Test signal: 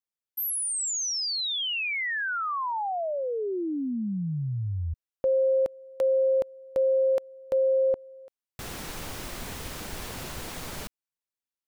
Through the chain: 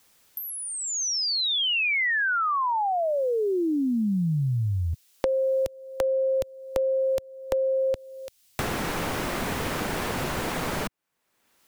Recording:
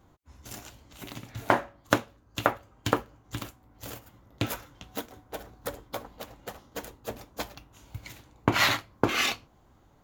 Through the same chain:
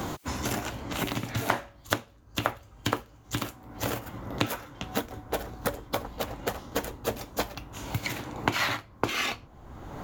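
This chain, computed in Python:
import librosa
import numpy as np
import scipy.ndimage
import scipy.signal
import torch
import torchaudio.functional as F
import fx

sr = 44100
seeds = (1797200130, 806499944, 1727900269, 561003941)

y = fx.band_squash(x, sr, depth_pct=100)
y = F.gain(torch.from_numpy(y), 2.5).numpy()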